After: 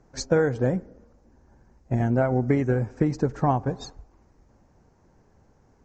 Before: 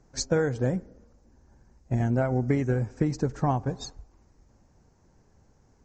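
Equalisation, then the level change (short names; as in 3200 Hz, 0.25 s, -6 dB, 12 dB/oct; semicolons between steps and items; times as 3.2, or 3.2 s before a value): low shelf 210 Hz -5 dB; high shelf 3500 Hz -10.5 dB; +5.0 dB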